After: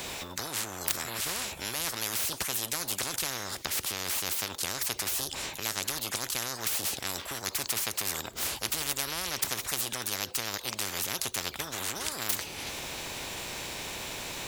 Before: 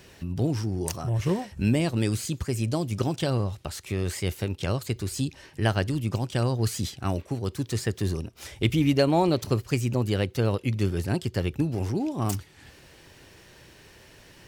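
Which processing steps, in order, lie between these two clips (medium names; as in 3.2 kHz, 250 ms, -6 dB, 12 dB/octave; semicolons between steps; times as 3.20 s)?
formant shift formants +5 st; spectrum-flattening compressor 10:1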